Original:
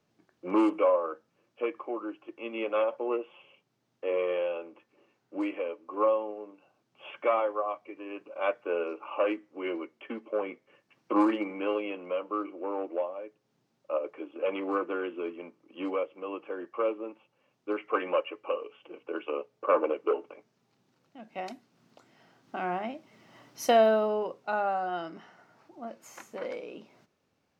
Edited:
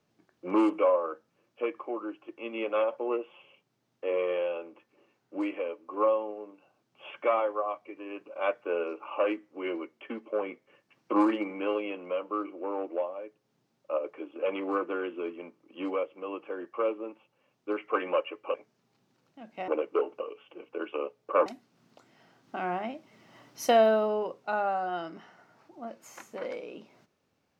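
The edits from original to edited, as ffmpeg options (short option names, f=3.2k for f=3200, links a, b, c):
-filter_complex "[0:a]asplit=5[a][b][c][d][e];[a]atrim=end=18.542[f];[b]atrim=start=20.318:end=21.462[g];[c]atrim=start=19.798:end=20.322[h];[d]atrim=start=18.538:end=19.802[i];[e]atrim=start=21.458[j];[f][g]acrossfade=d=0.004:c1=hsin:c2=hsin[k];[k][h]acrossfade=d=0.004:c1=hsin:c2=hsin[l];[l][i]acrossfade=d=0.004:c1=hsin:c2=hsin[m];[m][j]acrossfade=d=0.004:c1=hsin:c2=hsin"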